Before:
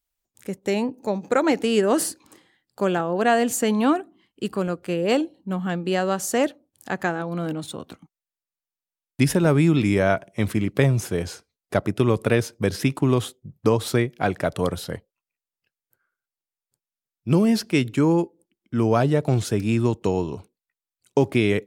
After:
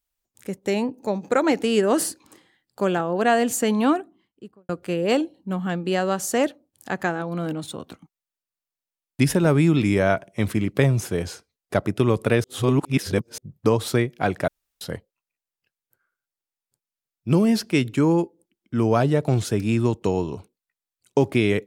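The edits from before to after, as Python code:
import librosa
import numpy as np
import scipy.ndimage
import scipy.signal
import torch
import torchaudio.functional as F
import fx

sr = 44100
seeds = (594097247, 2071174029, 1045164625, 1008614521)

y = fx.studio_fade_out(x, sr, start_s=3.9, length_s=0.79)
y = fx.edit(y, sr, fx.reverse_span(start_s=12.44, length_s=0.94),
    fx.room_tone_fill(start_s=14.48, length_s=0.33), tone=tone)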